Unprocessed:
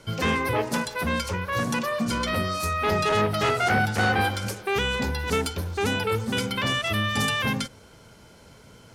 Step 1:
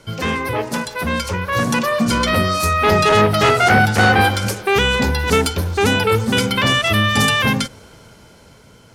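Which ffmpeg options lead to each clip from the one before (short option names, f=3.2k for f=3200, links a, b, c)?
-af "dynaudnorm=f=410:g=7:m=7dB,volume=3dB"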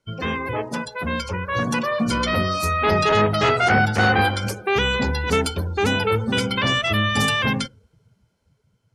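-af "afftdn=nr=22:nf=-31,volume=-4.5dB"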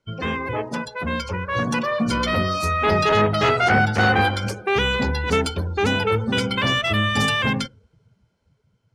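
-af "adynamicsmooth=sensitivity=3:basefreq=7.9k"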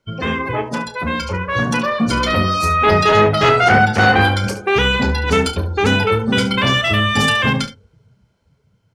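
-af "aecho=1:1:31|71:0.316|0.224,volume=4.5dB"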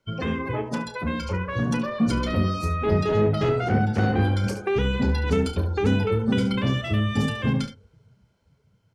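-filter_complex "[0:a]acrossover=split=470[a][b];[b]acompressor=threshold=-28dB:ratio=6[c];[a][c]amix=inputs=2:normalize=0,volume=-3.5dB"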